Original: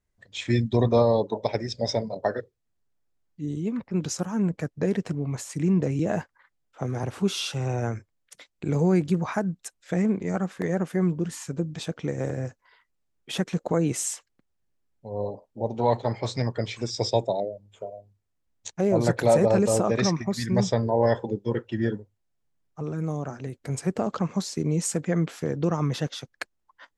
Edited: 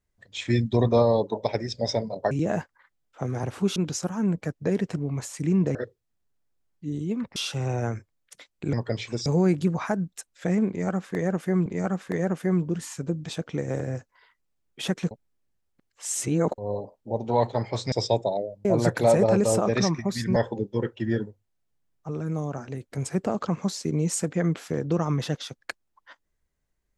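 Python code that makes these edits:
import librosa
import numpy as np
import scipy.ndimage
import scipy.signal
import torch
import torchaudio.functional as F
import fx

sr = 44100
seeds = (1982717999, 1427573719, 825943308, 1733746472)

y = fx.edit(x, sr, fx.swap(start_s=2.31, length_s=1.61, other_s=5.91, other_length_s=1.45),
    fx.repeat(start_s=10.16, length_s=0.97, count=2),
    fx.reverse_span(start_s=13.61, length_s=1.47),
    fx.move(start_s=16.42, length_s=0.53, to_s=8.73),
    fx.cut(start_s=17.68, length_s=1.19),
    fx.cut(start_s=20.58, length_s=0.5), tone=tone)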